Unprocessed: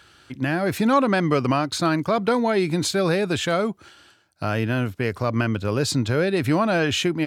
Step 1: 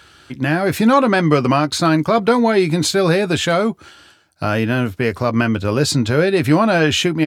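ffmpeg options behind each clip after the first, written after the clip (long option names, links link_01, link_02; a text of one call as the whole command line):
ffmpeg -i in.wav -filter_complex "[0:a]asplit=2[link_01][link_02];[link_02]adelay=13,volume=-10dB[link_03];[link_01][link_03]amix=inputs=2:normalize=0,volume=5.5dB" out.wav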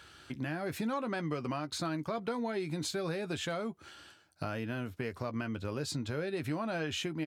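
ffmpeg -i in.wav -af "acompressor=threshold=-28dB:ratio=3,volume=-8.5dB" out.wav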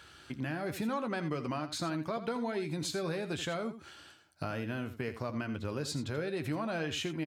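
ffmpeg -i in.wav -af "aecho=1:1:83:0.251" out.wav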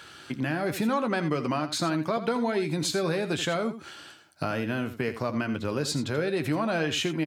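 ffmpeg -i in.wav -af "highpass=120,volume=8dB" out.wav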